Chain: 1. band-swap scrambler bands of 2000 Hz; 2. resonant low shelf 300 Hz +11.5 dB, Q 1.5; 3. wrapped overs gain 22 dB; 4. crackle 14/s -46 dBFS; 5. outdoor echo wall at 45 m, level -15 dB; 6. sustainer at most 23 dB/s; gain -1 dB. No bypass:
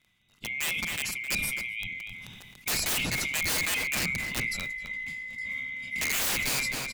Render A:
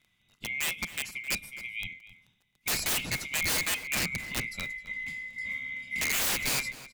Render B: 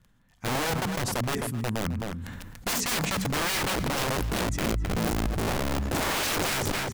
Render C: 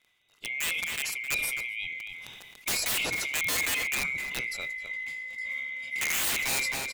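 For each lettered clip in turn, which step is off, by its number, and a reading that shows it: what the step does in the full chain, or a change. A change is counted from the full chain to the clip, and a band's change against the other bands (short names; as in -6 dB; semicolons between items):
6, crest factor change -3.0 dB; 1, 2 kHz band -14.5 dB; 2, 125 Hz band -8.0 dB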